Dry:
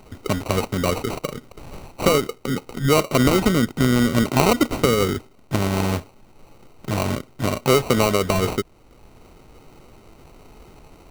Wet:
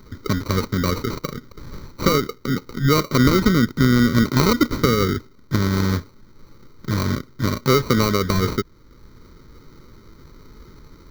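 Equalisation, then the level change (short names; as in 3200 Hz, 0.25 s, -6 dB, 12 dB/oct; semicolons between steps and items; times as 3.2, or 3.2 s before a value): fixed phaser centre 2700 Hz, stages 6; +3.5 dB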